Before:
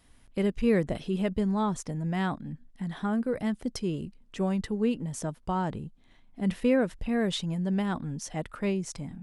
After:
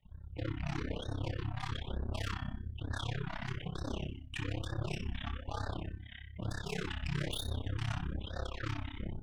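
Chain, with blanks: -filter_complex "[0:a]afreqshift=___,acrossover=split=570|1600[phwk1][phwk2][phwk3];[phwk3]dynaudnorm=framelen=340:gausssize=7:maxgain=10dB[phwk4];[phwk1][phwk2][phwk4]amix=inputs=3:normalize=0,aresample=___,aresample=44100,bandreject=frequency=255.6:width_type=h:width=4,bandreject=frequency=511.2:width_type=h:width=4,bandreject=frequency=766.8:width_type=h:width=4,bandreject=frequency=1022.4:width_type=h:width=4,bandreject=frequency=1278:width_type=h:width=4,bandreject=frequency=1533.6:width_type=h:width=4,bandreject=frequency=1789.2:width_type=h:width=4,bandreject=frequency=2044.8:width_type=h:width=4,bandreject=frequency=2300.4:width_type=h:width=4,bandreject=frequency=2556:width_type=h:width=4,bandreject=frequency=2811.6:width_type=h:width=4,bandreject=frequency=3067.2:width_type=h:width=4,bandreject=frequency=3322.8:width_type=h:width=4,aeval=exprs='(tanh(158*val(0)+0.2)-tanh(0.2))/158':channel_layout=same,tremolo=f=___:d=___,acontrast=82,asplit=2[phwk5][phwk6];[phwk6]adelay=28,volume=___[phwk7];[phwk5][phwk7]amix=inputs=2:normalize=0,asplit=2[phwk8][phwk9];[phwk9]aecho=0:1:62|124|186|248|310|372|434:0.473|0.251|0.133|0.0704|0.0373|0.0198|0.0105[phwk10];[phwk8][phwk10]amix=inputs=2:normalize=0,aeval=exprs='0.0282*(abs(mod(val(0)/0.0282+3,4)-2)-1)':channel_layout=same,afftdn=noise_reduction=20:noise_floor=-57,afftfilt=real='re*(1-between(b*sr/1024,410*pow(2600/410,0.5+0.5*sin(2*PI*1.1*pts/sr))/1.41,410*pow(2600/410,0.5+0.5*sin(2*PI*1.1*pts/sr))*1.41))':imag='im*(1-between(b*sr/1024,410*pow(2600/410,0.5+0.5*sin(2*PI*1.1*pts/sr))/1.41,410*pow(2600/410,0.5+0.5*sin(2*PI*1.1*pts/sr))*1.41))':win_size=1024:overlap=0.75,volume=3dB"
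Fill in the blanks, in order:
-89, 8000, 33, 0.974, -5.5dB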